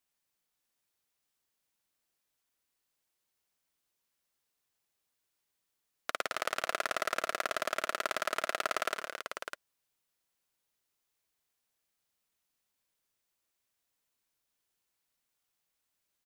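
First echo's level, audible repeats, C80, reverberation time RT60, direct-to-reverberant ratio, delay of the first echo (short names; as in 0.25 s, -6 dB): -10.5 dB, 4, none, none, none, 53 ms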